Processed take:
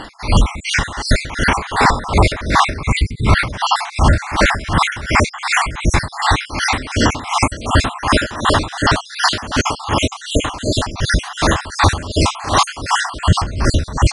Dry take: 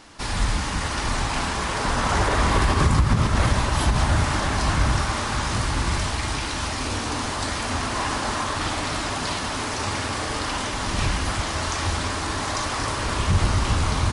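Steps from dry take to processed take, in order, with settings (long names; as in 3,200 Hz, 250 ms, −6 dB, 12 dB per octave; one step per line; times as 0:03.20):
time-frequency cells dropped at random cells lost 56%
high-shelf EQ 6,900 Hz −9 dB
0:02.92–0:03.27: time-frequency box erased 480–2,000 Hz
parametric band 2,200 Hz +6.5 dB 0.2 octaves, from 0:07.50 −6.5 dB
boost into a limiter +19.5 dB
tremolo with a sine in dB 2.7 Hz, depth 18 dB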